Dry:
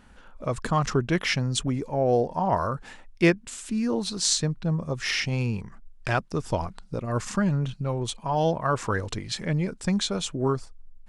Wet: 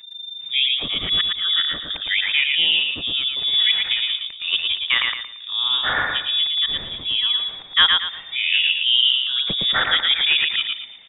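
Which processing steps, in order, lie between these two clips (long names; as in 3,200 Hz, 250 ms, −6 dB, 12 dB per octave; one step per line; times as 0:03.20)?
played backwards from end to start
voice inversion scrambler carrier 3,600 Hz
on a send: repeating echo 114 ms, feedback 34%, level −3.5 dB
on the sum: dynamic equaliser 1,800 Hz, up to +7 dB, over −39 dBFS, Q 1.6
level +2 dB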